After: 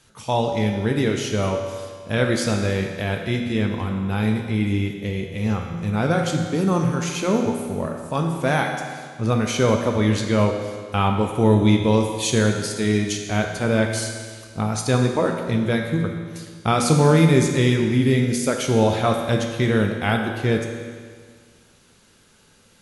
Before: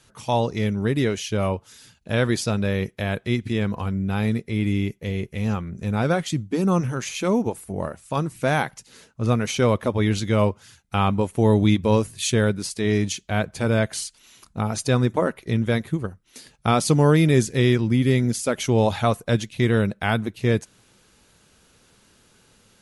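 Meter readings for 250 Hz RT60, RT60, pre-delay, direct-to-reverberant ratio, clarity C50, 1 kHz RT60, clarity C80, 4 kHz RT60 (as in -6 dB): 1.8 s, 1.8 s, 12 ms, 2.5 dB, 4.5 dB, 1.8 s, 5.5 dB, 1.7 s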